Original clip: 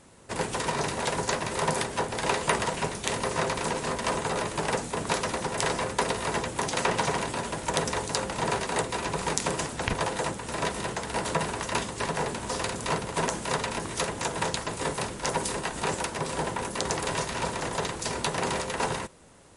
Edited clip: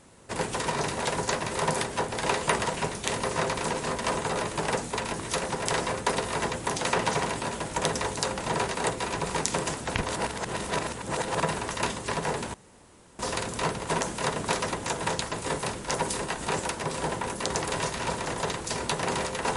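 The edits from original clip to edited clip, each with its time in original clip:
0:04.97–0:05.35: swap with 0:13.63–0:14.09
0:10.01–0:11.32: reverse
0:12.46: splice in room tone 0.65 s

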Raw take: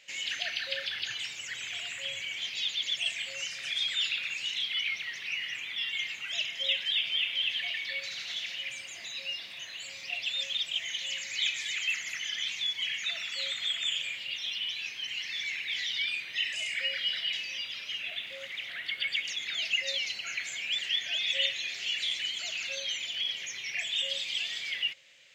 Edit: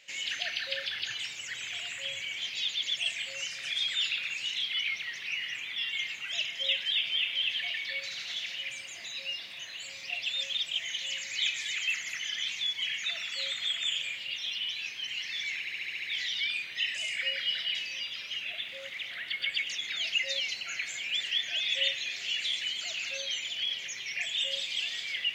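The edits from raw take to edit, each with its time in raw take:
0:15.60: stutter 0.07 s, 7 plays

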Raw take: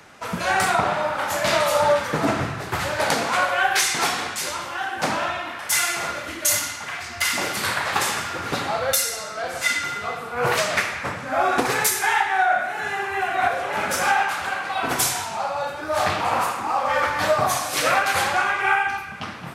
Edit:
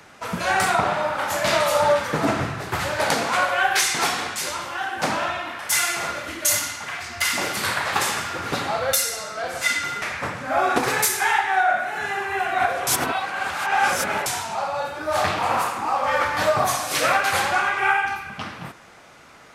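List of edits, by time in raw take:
0:10.02–0:10.84: remove
0:13.69–0:15.08: reverse

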